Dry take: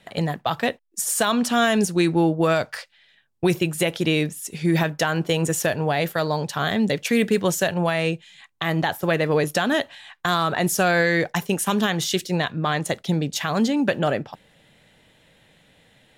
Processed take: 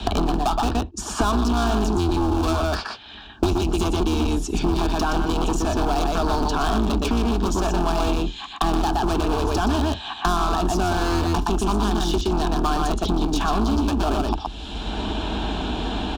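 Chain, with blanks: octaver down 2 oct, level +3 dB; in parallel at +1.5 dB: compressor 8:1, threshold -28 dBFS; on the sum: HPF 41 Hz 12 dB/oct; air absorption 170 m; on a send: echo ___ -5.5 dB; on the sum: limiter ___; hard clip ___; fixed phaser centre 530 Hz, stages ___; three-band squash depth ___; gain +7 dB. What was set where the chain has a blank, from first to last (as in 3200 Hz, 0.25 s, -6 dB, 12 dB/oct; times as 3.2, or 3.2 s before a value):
0.12 s, -10.5 dBFS, -22.5 dBFS, 6, 100%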